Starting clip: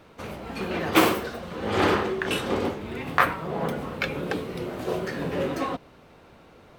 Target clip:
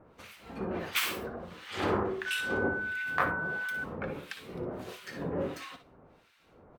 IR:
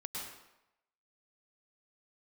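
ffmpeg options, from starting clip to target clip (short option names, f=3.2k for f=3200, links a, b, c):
-filter_complex "[0:a]acrossover=split=1500[a][b];[a]aeval=exprs='val(0)*(1-1/2+1/2*cos(2*PI*1.5*n/s))':c=same[c];[b]aeval=exprs='val(0)*(1-1/2-1/2*cos(2*PI*1.5*n/s))':c=same[d];[c][d]amix=inputs=2:normalize=0,aecho=1:1:58|68:0.251|0.188,asettb=1/sr,asplit=3[e][f][g];[e]atrim=end=2.264[h];[f]atrim=start=2.26:end=3.84,asetpts=PTS-STARTPTS,afade=t=in:d=0.004:c=qsin,afade=t=out:st=1.576:d=0.004:c=qsin,aeval=exprs='val(0)+0.0398*sin(2*PI*1500*n/s)':c=same[i];[g]atrim=start=3.836[j];[h][i]acrossfade=d=0.004:c1=hsin:c2=qsin[k];[k][j]acrossfade=d=0.004:c1=qsin:c2=hsin,volume=-4dB"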